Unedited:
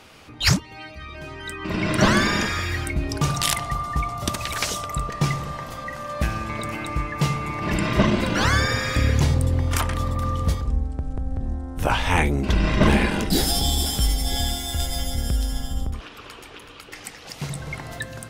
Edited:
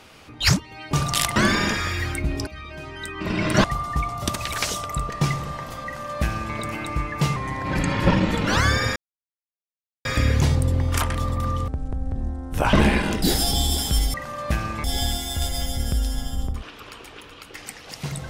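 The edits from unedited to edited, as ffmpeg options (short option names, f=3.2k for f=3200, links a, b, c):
-filter_complex "[0:a]asplit=12[a][b][c][d][e][f][g][h][i][j][k][l];[a]atrim=end=0.912[m];[b]atrim=start=3.188:end=3.642[n];[c]atrim=start=2.078:end=3.192[o];[d]atrim=start=0.908:end=2.082[p];[e]atrim=start=3.638:end=7.364[q];[f]atrim=start=7.36:end=8.33,asetpts=PTS-STARTPTS,asetrate=39249,aresample=44100,atrim=end_sample=48064,asetpts=PTS-STARTPTS[r];[g]atrim=start=8.326:end=8.84,asetpts=PTS-STARTPTS,afade=t=out:st=0.51:d=0.004:c=hsin,apad=pad_dur=1.09[s];[h]atrim=start=8.84:end=10.472,asetpts=PTS-STARTPTS,afade=t=in:d=0.004:c=hsin[t];[i]atrim=start=10.928:end=11.982[u];[j]atrim=start=12.808:end=14.222[v];[k]atrim=start=5.848:end=6.552[w];[l]atrim=start=14.218[x];[m][n]acrossfade=d=0.004:c1=hsin:c2=hsin[y];[y][o]acrossfade=d=0.004:c1=hsin:c2=hsin[z];[z][p]acrossfade=d=0.004:c1=hsin:c2=hsin[aa];[aa][q]acrossfade=d=0.004:c1=hsin:c2=hsin[ab];[ab][r]acrossfade=d=0.004:c1=hsin:c2=hsin[ac];[s][t]concat=n=2:v=0:a=1[ad];[ac][ad]acrossfade=d=0.004:c1=hsin:c2=hsin[ae];[ae][u]acrossfade=d=0.004:c1=hsin:c2=hsin[af];[af][v]acrossfade=d=0.004:c1=hsin:c2=hsin[ag];[ag][w]acrossfade=d=0.004:c1=hsin:c2=hsin[ah];[ah][x]acrossfade=d=0.004:c1=hsin:c2=hsin"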